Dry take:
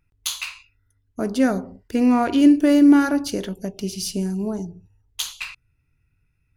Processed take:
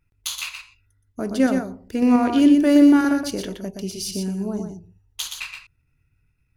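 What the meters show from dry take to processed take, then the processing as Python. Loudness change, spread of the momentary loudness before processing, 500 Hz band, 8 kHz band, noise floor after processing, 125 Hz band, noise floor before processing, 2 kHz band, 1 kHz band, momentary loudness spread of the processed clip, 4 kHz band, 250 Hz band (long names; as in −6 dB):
0.0 dB, 17 LU, 0.0 dB, −0.5 dB, −68 dBFS, can't be measured, −68 dBFS, −0.5 dB, −1.0 dB, 18 LU, −0.5 dB, 0.0 dB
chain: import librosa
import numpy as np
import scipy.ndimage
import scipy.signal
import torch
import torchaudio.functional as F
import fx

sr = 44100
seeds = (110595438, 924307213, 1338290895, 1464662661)

p1 = fx.level_steps(x, sr, step_db=17)
p2 = x + (p1 * 10.0 ** (-1.0 / 20.0))
p3 = p2 + 10.0 ** (-6.0 / 20.0) * np.pad(p2, (int(121 * sr / 1000.0), 0))[:len(p2)]
y = p3 * 10.0 ** (-4.5 / 20.0)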